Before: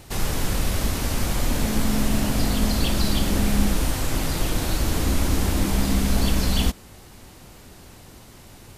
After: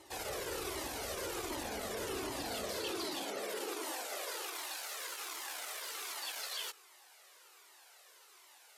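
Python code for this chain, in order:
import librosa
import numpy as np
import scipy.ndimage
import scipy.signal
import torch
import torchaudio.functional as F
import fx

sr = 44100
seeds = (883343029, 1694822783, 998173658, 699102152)

y = fx.low_shelf_res(x, sr, hz=260.0, db=-13.5, q=3.0)
y = fx.hum_notches(y, sr, base_hz=50, count=5)
y = fx.tube_stage(y, sr, drive_db=28.0, bias=0.65)
y = fx.filter_sweep_highpass(y, sr, from_hz=67.0, to_hz=1100.0, start_s=2.3, end_s=4.78, q=0.8)
y = fx.spec_gate(y, sr, threshold_db=-25, keep='strong')
y = fx.comb_cascade(y, sr, direction='falling', hz=1.3)
y = y * 10.0 ** (-2.0 / 20.0)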